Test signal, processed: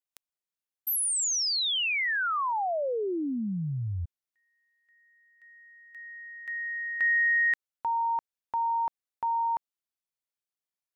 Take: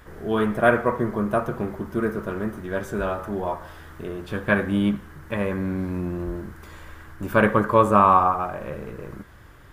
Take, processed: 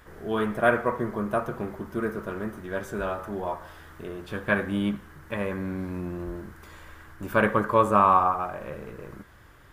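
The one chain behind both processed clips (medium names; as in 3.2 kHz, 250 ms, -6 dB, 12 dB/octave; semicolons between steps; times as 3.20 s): bass shelf 400 Hz -3.5 dB; trim -2.5 dB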